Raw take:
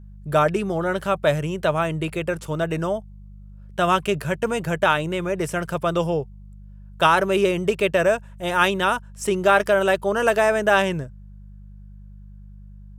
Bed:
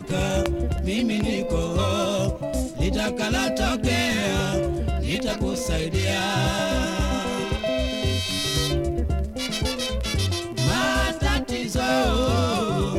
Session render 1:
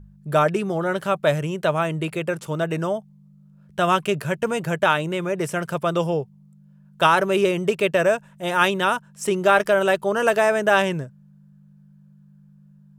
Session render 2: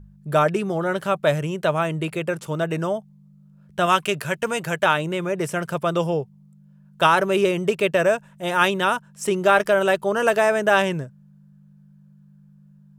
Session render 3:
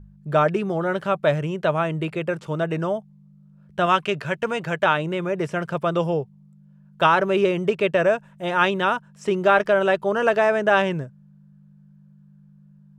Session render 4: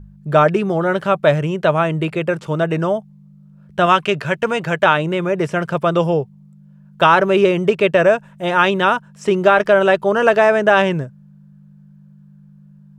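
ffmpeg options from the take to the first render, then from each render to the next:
-af "bandreject=f=50:t=h:w=4,bandreject=f=100:t=h:w=4"
-filter_complex "[0:a]asettb=1/sr,asplit=3[s0][s1][s2];[s0]atrim=end=3.864[s3];[s1]atrim=start=3.86:end=4.85,asetpts=PTS-STARTPTS,afade=t=in:d=0.004:c=qsin,afade=t=out:st=0.986:d=0.004:c=qsin,tiltshelf=f=760:g=-4[s4];[s2]atrim=start=4.846[s5];[s3][s4]acrossfade=d=0.004:c1=hsin:c2=qsin[s6];[s6][s5]acrossfade=d=0.004:c1=qsin:c2=hsin"
-filter_complex "[0:a]acrossover=split=6700[s0][s1];[s1]acompressor=threshold=0.00224:ratio=4:attack=1:release=60[s2];[s0][s2]amix=inputs=2:normalize=0,highshelf=f=5200:g=-9.5"
-af "volume=2,alimiter=limit=0.891:level=0:latency=1"

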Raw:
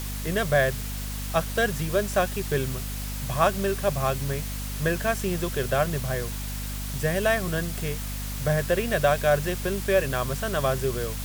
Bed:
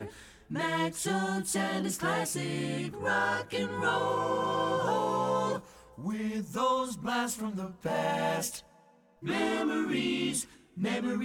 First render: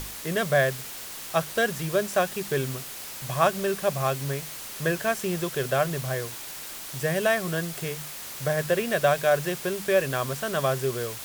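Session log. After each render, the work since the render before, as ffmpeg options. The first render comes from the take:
-af "bandreject=f=50:t=h:w=6,bandreject=f=100:t=h:w=6,bandreject=f=150:t=h:w=6,bandreject=f=200:t=h:w=6,bandreject=f=250:t=h:w=6"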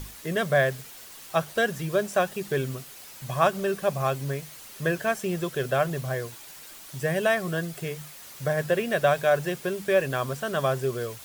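-af "afftdn=nr=8:nf=-39"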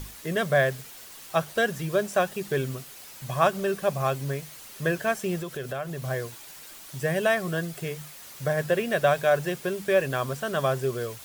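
-filter_complex "[0:a]asettb=1/sr,asplit=3[s0][s1][s2];[s0]atrim=end=5.414[s3];[s1]atrim=start=5.41:end=6.04,asetpts=PTS-STARTPTS,afade=t=in:d=0.004:c=qsin,afade=t=out:st=0.626:d=0.004:c=qsin,acompressor=threshold=0.0251:ratio=2.5:attack=3.2:release=140:knee=1:detection=peak[s4];[s2]atrim=start=6.036[s5];[s3][s4]acrossfade=d=0.004:c1=hsin:c2=qsin[s6];[s6][s5]acrossfade=d=0.004:c1=qsin:c2=hsin"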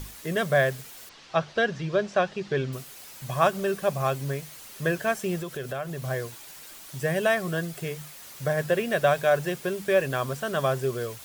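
-filter_complex "[0:a]asettb=1/sr,asplit=3[s0][s1][s2];[s0]atrim=end=1.094[s3];[s1]atrim=start=1.09:end=2.73,asetpts=PTS-STARTPTS,afade=t=in:d=0.004:c=qsin,afade=t=out:st=1.636:d=0.004:c=qsin,lowpass=f=5400:w=0.5412,lowpass=f=5400:w=1.3066[s4];[s2]atrim=start=2.726[s5];[s3][s4]acrossfade=d=0.004:c1=hsin:c2=qsin[s6];[s6][s5]acrossfade=d=0.004:c1=qsin:c2=hsin"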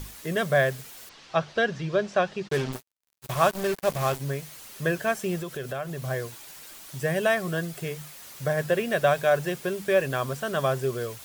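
-filter_complex "[0:a]asplit=3[s0][s1][s2];[s0]afade=t=out:st=2.47:d=0.02[s3];[s1]acrusher=bits=4:mix=0:aa=0.5,afade=t=in:st=2.47:d=0.02,afade=t=out:st=4.19:d=0.02[s4];[s2]afade=t=in:st=4.19:d=0.02[s5];[s3][s4][s5]amix=inputs=3:normalize=0"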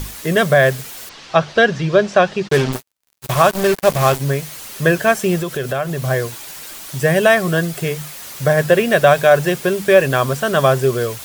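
-af "alimiter=level_in=3.76:limit=0.891:release=50:level=0:latency=1"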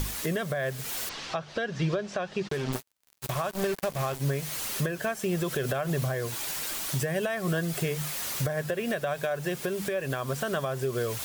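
-af "acompressor=threshold=0.0891:ratio=10,alimiter=limit=0.106:level=0:latency=1:release=320"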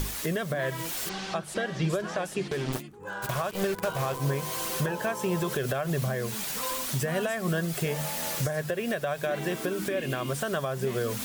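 -filter_complex "[1:a]volume=0.376[s0];[0:a][s0]amix=inputs=2:normalize=0"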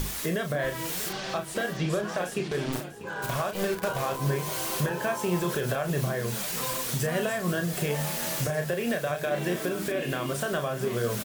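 -filter_complex "[0:a]asplit=2[s0][s1];[s1]adelay=34,volume=0.473[s2];[s0][s2]amix=inputs=2:normalize=0,aecho=1:1:644|1288|1932|2576:0.188|0.0772|0.0317|0.013"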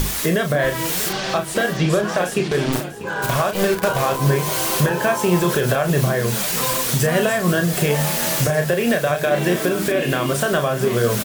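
-af "volume=3.16"

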